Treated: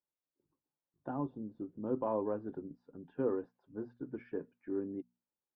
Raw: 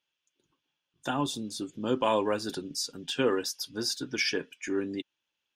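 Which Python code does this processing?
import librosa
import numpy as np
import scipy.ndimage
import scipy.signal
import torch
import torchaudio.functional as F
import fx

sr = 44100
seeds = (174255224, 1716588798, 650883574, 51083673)

y = scipy.signal.sosfilt(scipy.signal.bessel(4, 750.0, 'lowpass', norm='mag', fs=sr, output='sos'), x)
y = fx.hum_notches(y, sr, base_hz=60, count=4)
y = F.gain(torch.from_numpy(y), -5.5).numpy()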